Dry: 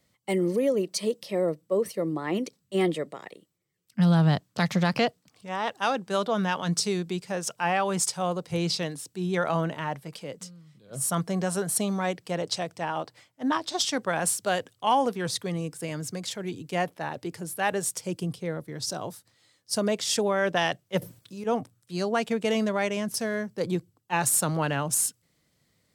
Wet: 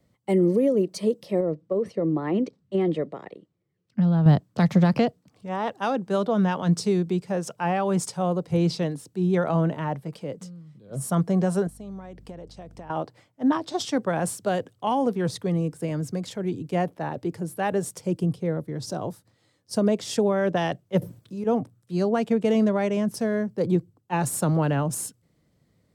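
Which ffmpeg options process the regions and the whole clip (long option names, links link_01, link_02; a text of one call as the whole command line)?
ffmpeg -i in.wav -filter_complex "[0:a]asettb=1/sr,asplit=3[link_01][link_02][link_03];[link_01]atrim=end=1.404[link_04];[link_02]atrim=start=1.4:end=4.26,asetpts=PTS-STARTPTS,afade=type=in:duration=0.004:curve=qsin,afade=type=out:start_time=2.856:duration=0.004:curve=qsin,lowpass=5000,acompressor=threshold=-24dB:ratio=6:attack=3.2:release=140:knee=1:detection=peak[link_05];[link_03]atrim=start=4.256[link_06];[link_04][link_05]acrossfade=duration=0.004:curve1=hsin:curve2=qsin[link_07];[link_07][link_06]acrossfade=duration=0.004:curve1=qsin:curve2=hsin,asettb=1/sr,asplit=3[link_08][link_09][link_10];[link_08]atrim=end=11.674[link_11];[link_09]atrim=start=11.67:end=12.9,asetpts=PTS-STARTPTS,afade=type=in:duration=0.004:curve=qsin,afade=type=out:start_time=1.226:duration=0.004:curve=qsin,acompressor=threshold=-40dB:ratio=16:attack=3.2:release=140:knee=1:detection=peak,aeval=exprs='val(0)+0.00158*(sin(2*PI*50*n/s)+sin(2*PI*2*50*n/s)/2+sin(2*PI*3*50*n/s)/3+sin(2*PI*4*50*n/s)/4+sin(2*PI*5*50*n/s)/5)':channel_layout=same[link_12];[link_10]atrim=start=12.896[link_13];[link_11][link_12]acrossfade=duration=0.004:curve1=hsin:curve2=qsin[link_14];[link_14][link_13]acrossfade=duration=0.004:curve1=qsin:curve2=hsin,tiltshelf=frequency=1100:gain=7,acrossover=split=360|3000[link_15][link_16][link_17];[link_16]acompressor=threshold=-22dB:ratio=6[link_18];[link_15][link_18][link_17]amix=inputs=3:normalize=0" out.wav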